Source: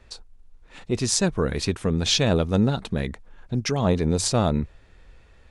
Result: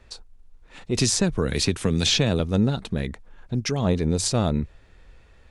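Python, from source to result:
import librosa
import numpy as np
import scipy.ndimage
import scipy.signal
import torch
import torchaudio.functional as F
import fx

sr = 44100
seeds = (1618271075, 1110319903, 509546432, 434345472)

y = fx.dynamic_eq(x, sr, hz=940.0, q=0.78, threshold_db=-36.0, ratio=4.0, max_db=-4)
y = fx.band_squash(y, sr, depth_pct=100, at=(0.97, 2.4))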